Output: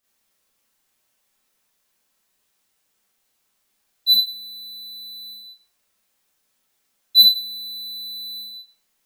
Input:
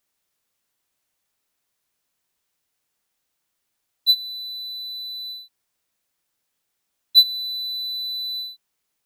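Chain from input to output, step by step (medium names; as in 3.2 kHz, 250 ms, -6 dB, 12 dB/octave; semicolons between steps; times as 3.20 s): Schroeder reverb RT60 0.33 s, combs from 29 ms, DRR -7.5 dB; trim -2 dB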